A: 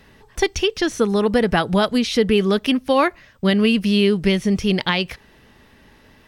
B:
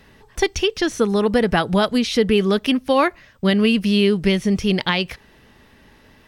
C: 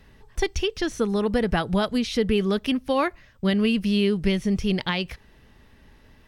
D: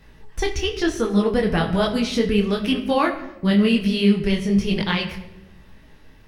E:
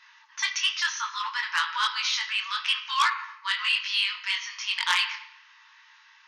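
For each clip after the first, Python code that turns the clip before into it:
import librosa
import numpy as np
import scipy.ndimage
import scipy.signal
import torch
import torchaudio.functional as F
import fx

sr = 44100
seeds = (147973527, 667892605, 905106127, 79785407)

y1 = x
y2 = fx.low_shelf(y1, sr, hz=94.0, db=11.5)
y2 = y2 * 10.0 ** (-6.5 / 20.0)
y3 = fx.room_shoebox(y2, sr, seeds[0], volume_m3=450.0, walls='mixed', distance_m=0.57)
y3 = fx.detune_double(y3, sr, cents=36)
y3 = y3 * 10.0 ** (6.0 / 20.0)
y4 = fx.brickwall_bandpass(y3, sr, low_hz=870.0, high_hz=6800.0)
y4 = fx.transformer_sat(y4, sr, knee_hz=3800.0)
y4 = y4 * 10.0 ** (3.5 / 20.0)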